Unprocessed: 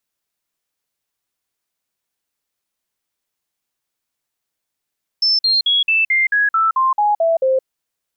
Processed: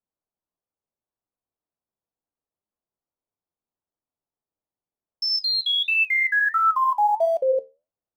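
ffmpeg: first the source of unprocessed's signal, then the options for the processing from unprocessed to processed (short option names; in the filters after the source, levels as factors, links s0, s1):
-f lavfi -i "aevalsrc='0.251*clip(min(mod(t,0.22),0.17-mod(t,0.22))/0.005,0,1)*sin(2*PI*5290*pow(2,-floor(t/0.22)/3)*mod(t,0.22))':d=2.42:s=44100"
-filter_complex "[0:a]lowpass=f=4000:p=1,acrossover=split=700|1100[s0][s1][s2];[s2]acrusher=bits=7:mix=0:aa=0.000001[s3];[s0][s1][s3]amix=inputs=3:normalize=0,flanger=delay=9.8:depth=3.5:regen=74:speed=1.5:shape=sinusoidal"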